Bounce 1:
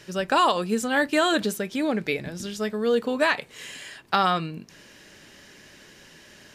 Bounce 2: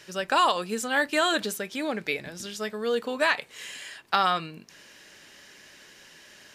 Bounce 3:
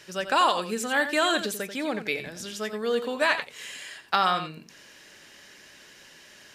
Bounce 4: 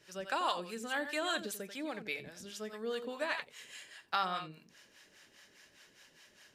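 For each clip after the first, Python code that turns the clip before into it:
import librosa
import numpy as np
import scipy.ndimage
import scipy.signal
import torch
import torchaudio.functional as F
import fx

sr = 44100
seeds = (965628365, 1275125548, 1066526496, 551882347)

y1 = fx.low_shelf(x, sr, hz=410.0, db=-10.0)
y2 = y1 + 10.0 ** (-10.5 / 20.0) * np.pad(y1, (int(88 * sr / 1000.0), 0))[:len(y1)]
y3 = fx.harmonic_tremolo(y2, sr, hz=4.9, depth_pct=70, crossover_hz=610.0)
y3 = F.gain(torch.from_numpy(y3), -7.5).numpy()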